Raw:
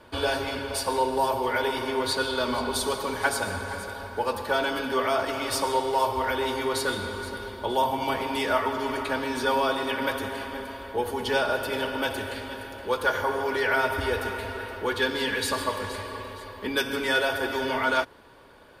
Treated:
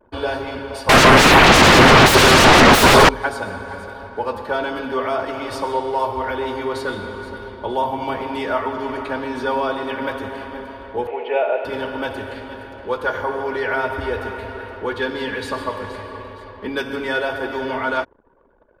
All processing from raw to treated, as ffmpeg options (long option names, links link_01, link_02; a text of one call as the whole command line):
ffmpeg -i in.wav -filter_complex "[0:a]asettb=1/sr,asplit=3[link_01][link_02][link_03];[link_01]atrim=end=0.894[link_04];[link_02]atrim=start=0.89:end=3.09,asetpts=PTS-STARTPTS,afade=type=in:duration=0.004:curve=qsin,afade=type=out:start_time=2.196:duration=0.004:curve=qsin,acontrast=61,aeval=exprs='0.447*sin(PI/2*8.91*val(0)/0.447)':channel_layout=same[link_05];[link_03]atrim=start=3.086[link_06];[link_04][link_05]acrossfade=duration=0.004:curve1=hsin:curve2=qsin[link_07];[link_07][link_06]acrossfade=duration=0.004:curve1=qsin:curve2=hsin,asettb=1/sr,asplit=3[link_08][link_09][link_10];[link_08]atrim=end=11.074[link_11];[link_09]atrim=start=11.07:end=11.65,asetpts=PTS-STARTPTS,afade=type=in:duration=0.004:curve=qsin,afade=type=out:start_time=0.576:duration=0.004:curve=qsin,acrusher=bits=7:dc=4:mix=0:aa=0.000001,highpass=frequency=380:width=0.5412,highpass=frequency=380:width=1.3066,equalizer=frequency=470:width_type=q:width=4:gain=4,equalizer=frequency=680:width_type=q:width=4:gain=8,equalizer=frequency=1100:width_type=q:width=4:gain=-7,equalizer=frequency=1600:width_type=q:width=4:gain=-7,equalizer=frequency=2500:width_type=q:width=4:gain=10,lowpass=frequency=2600:width=0.5412,lowpass=frequency=2600:width=1.3066[link_12];[link_10]atrim=start=11.646[link_13];[link_11][link_12]acrossfade=duration=0.004:curve1=hsin:curve2=qsin[link_14];[link_14][link_13]acrossfade=duration=0.004:curve1=qsin:curve2=hsin,bandreject=frequency=45.77:width_type=h:width=4,bandreject=frequency=91.54:width_type=h:width=4,anlmdn=0.0158,lowpass=frequency=1700:poles=1,volume=4dB" out.wav